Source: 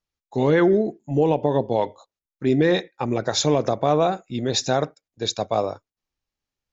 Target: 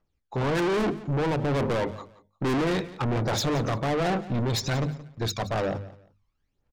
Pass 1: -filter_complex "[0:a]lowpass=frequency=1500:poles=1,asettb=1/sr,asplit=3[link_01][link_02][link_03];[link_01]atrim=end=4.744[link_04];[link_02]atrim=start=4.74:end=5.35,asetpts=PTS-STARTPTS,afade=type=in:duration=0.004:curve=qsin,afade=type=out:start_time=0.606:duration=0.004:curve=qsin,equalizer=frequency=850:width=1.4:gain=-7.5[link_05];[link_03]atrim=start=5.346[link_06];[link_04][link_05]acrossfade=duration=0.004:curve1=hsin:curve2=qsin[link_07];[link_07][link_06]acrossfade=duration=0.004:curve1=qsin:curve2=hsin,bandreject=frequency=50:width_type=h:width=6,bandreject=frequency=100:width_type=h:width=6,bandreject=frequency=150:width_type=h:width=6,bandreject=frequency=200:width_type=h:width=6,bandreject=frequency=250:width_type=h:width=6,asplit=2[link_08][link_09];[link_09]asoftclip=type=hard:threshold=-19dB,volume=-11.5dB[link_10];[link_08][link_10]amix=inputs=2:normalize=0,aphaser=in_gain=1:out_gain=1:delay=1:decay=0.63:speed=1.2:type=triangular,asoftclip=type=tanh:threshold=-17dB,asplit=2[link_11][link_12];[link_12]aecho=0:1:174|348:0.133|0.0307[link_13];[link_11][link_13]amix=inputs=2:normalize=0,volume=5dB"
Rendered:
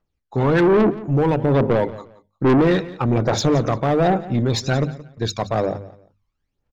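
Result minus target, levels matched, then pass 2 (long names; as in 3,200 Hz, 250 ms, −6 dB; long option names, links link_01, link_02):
soft clipping: distortion −5 dB
-filter_complex "[0:a]lowpass=frequency=1500:poles=1,asettb=1/sr,asplit=3[link_01][link_02][link_03];[link_01]atrim=end=4.744[link_04];[link_02]atrim=start=4.74:end=5.35,asetpts=PTS-STARTPTS,afade=type=in:duration=0.004:curve=qsin,afade=type=out:start_time=0.606:duration=0.004:curve=qsin,equalizer=frequency=850:width=1.4:gain=-7.5[link_05];[link_03]atrim=start=5.346[link_06];[link_04][link_05]acrossfade=duration=0.004:curve1=hsin:curve2=qsin[link_07];[link_07][link_06]acrossfade=duration=0.004:curve1=qsin:curve2=hsin,bandreject=frequency=50:width_type=h:width=6,bandreject=frequency=100:width_type=h:width=6,bandreject=frequency=150:width_type=h:width=6,bandreject=frequency=200:width_type=h:width=6,bandreject=frequency=250:width_type=h:width=6,asplit=2[link_08][link_09];[link_09]asoftclip=type=hard:threshold=-19dB,volume=-11.5dB[link_10];[link_08][link_10]amix=inputs=2:normalize=0,aphaser=in_gain=1:out_gain=1:delay=1:decay=0.63:speed=1.2:type=triangular,asoftclip=type=tanh:threshold=-28.5dB,asplit=2[link_11][link_12];[link_12]aecho=0:1:174|348:0.133|0.0307[link_13];[link_11][link_13]amix=inputs=2:normalize=0,volume=5dB"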